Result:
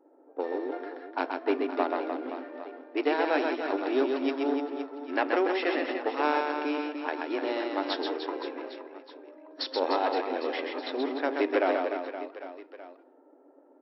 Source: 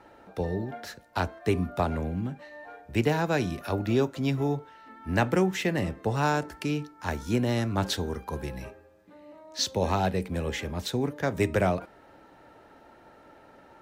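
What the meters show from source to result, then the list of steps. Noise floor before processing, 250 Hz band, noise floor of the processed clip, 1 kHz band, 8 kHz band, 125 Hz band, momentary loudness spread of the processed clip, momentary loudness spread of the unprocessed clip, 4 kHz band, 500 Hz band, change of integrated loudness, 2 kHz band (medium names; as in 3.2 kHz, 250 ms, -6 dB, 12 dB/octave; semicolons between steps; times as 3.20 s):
-55 dBFS, -2.0 dB, -59 dBFS, +1.5 dB, under -30 dB, under -40 dB, 16 LU, 12 LU, -2.0 dB, +1.5 dB, -1.0 dB, +0.5 dB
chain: partial rectifier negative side -7 dB; level-controlled noise filter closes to 370 Hz, open at -27.5 dBFS; treble shelf 4.2 kHz -6.5 dB; reverse bouncing-ball echo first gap 130 ms, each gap 1.3×, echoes 5; FFT band-pass 250–5600 Hz; trim +2 dB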